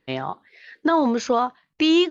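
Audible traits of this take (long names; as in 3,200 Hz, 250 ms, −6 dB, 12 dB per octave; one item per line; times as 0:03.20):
background noise floor −74 dBFS
spectral slope −2.5 dB per octave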